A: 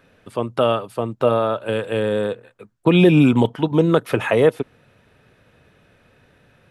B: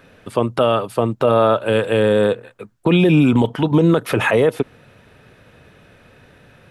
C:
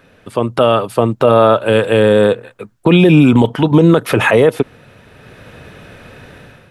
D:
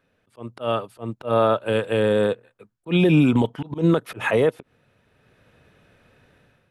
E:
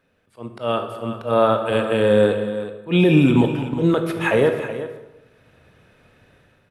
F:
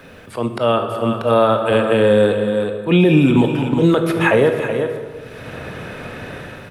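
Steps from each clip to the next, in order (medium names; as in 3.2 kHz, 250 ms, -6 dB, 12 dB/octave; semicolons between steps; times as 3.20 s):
peak limiter -13 dBFS, peak gain reduction 10 dB; trim +7 dB
level rider gain up to 11 dB
slow attack 112 ms; upward expansion 1.5:1, over -30 dBFS; trim -7.5 dB
multi-tap echo 225/372 ms -18.5/-12.5 dB; on a send at -6 dB: reverberation RT60 0.95 s, pre-delay 12 ms; on the sum: trim +1.5 dB
three bands compressed up and down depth 70%; trim +3.5 dB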